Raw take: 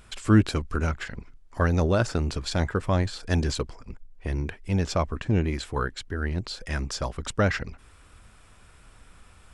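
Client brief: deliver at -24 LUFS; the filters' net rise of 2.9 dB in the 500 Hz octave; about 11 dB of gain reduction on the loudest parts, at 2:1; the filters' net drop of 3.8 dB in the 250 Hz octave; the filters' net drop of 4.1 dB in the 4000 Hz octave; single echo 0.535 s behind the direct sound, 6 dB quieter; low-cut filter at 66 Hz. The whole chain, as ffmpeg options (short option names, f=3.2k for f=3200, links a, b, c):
-af "highpass=66,equalizer=f=250:t=o:g=-7,equalizer=f=500:t=o:g=5.5,equalizer=f=4k:t=o:g=-5,acompressor=threshold=-37dB:ratio=2,aecho=1:1:535:0.501,volume=12dB"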